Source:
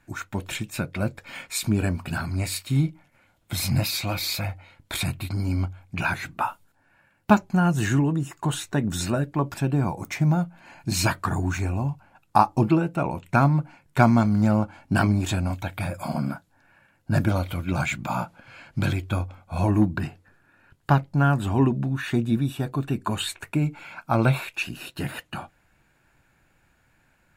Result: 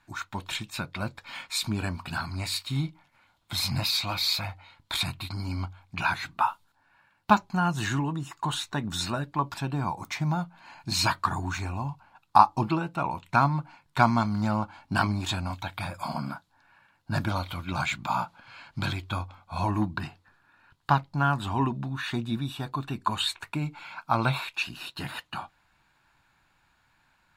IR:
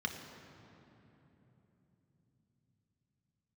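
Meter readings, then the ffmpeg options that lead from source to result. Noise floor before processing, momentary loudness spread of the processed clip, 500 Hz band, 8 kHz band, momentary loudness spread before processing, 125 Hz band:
-65 dBFS, 13 LU, -7.0 dB, -4.5 dB, 12 LU, -7.0 dB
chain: -af "equalizer=f=500:t=o:w=1:g=-5,equalizer=f=1k:t=o:w=1:g=11,equalizer=f=4k:t=o:w=1:g=11,volume=-7dB"

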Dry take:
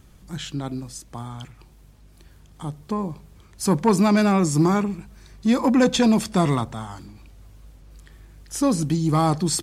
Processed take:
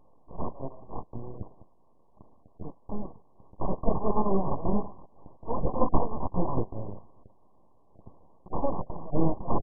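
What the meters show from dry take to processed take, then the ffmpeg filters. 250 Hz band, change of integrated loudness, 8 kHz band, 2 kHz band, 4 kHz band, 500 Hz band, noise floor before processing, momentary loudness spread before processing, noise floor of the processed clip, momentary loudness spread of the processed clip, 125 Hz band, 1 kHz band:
-12.5 dB, -11.0 dB, under -40 dB, under -40 dB, under -40 dB, -7.0 dB, -51 dBFS, 18 LU, -58 dBFS, 17 LU, -10.0 dB, -6.5 dB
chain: -af "flanger=delay=9.5:depth=1.4:regen=-31:speed=0.53:shape=sinusoidal,acontrast=76,highpass=1.2k,aresample=16000,aeval=exprs='abs(val(0))':c=same,aresample=44100,volume=8dB" -ar 24000 -c:a mp2 -b:a 8k

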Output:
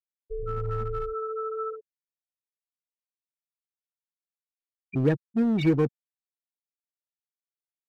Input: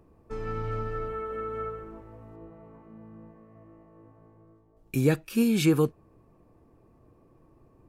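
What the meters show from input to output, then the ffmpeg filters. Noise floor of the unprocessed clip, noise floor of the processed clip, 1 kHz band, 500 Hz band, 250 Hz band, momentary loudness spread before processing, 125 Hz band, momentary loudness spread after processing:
-61 dBFS, under -85 dBFS, +1.5 dB, +0.5 dB, 0.0 dB, 23 LU, +0.5 dB, 13 LU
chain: -filter_complex "[0:a]afftfilt=real='re*gte(hypot(re,im),0.0891)':imag='im*gte(hypot(re,im),0.0891)':win_size=1024:overlap=0.75,asplit=2[a][b];[b]aeval=exprs='0.0422*(abs(mod(val(0)/0.0422+3,4)-2)-1)':c=same,volume=-8dB[c];[a][c]amix=inputs=2:normalize=0"

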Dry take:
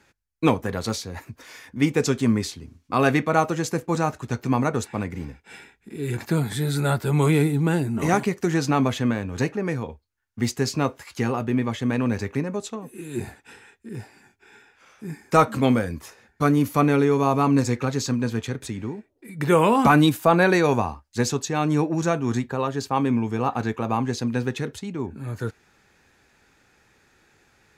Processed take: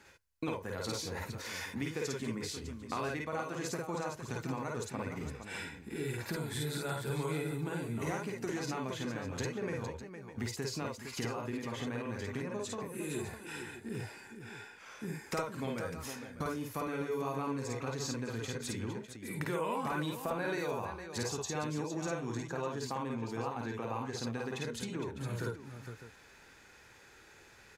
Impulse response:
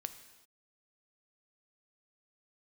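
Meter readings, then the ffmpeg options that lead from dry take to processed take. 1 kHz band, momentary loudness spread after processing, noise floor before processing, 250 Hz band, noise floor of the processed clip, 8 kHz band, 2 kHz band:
-15.5 dB, 10 LU, -63 dBFS, -16.0 dB, -58 dBFS, -8.5 dB, -12.0 dB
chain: -af "lowshelf=f=330:g=-4.5,acompressor=threshold=-37dB:ratio=6,aecho=1:1:51|53|460|604:0.596|0.708|0.376|0.237"

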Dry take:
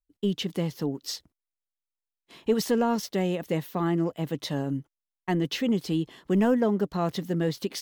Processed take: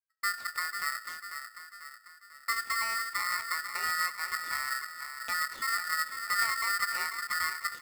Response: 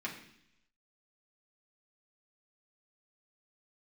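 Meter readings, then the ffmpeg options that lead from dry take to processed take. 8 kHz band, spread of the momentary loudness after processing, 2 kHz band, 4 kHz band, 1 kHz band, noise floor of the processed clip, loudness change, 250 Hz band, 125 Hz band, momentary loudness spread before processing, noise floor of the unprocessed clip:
+4.5 dB, 12 LU, +11.0 dB, +0.5 dB, +2.5 dB, -57 dBFS, -3.5 dB, under -35 dB, under -30 dB, 8 LU, under -85 dBFS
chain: -filter_complex "[0:a]agate=range=-16dB:threshold=-44dB:ratio=16:detection=peak,lowpass=1.7k,bandreject=f=63.1:t=h:w=4,bandreject=f=126.2:t=h:w=4,bandreject=f=189.3:t=h:w=4,bandreject=f=252.4:t=h:w=4,bandreject=f=315.5:t=h:w=4,acrossover=split=150|470[a][b][c];[a]acompressor=threshold=-44dB:ratio=4[d];[b]acompressor=threshold=-25dB:ratio=4[e];[c]acompressor=threshold=-43dB:ratio=4[f];[d][e][f]amix=inputs=3:normalize=0,asplit=2[g][h];[h]adelay=494,lowpass=f=950:p=1,volume=-7.5dB,asplit=2[i][j];[j]adelay=494,lowpass=f=950:p=1,volume=0.52,asplit=2[k][l];[l]adelay=494,lowpass=f=950:p=1,volume=0.52,asplit=2[m][n];[n]adelay=494,lowpass=f=950:p=1,volume=0.52,asplit=2[o][p];[p]adelay=494,lowpass=f=950:p=1,volume=0.52,asplit=2[q][r];[r]adelay=494,lowpass=f=950:p=1,volume=0.52[s];[g][i][k][m][o][q][s]amix=inputs=7:normalize=0,asplit=2[t][u];[1:a]atrim=start_sample=2205[v];[u][v]afir=irnorm=-1:irlink=0,volume=-12dB[w];[t][w]amix=inputs=2:normalize=0,aeval=exprs='val(0)*sgn(sin(2*PI*1600*n/s))':c=same,volume=-4.5dB"

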